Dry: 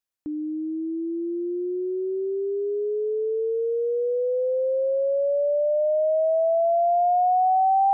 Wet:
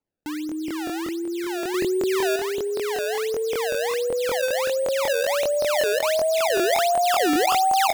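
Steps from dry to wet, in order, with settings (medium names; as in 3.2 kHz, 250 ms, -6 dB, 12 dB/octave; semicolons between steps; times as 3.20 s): 1.74–2.36 s: peaking EQ 800 Hz +11 dB 1.9 oct; decimation with a swept rate 24×, swing 160% 1.4 Hz; on a send: frequency-shifting echo 129 ms, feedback 52%, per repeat +39 Hz, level -24 dB; on the sum: crackling interface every 0.19 s, samples 1024, repeat, from 0.47 s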